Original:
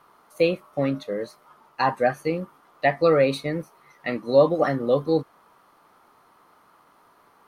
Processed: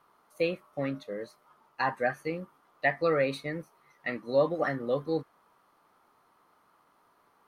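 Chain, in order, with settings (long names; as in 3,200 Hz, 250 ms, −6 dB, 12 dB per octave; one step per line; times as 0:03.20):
dynamic equaliser 1,800 Hz, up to +7 dB, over −42 dBFS, Q 1.8
level −8.5 dB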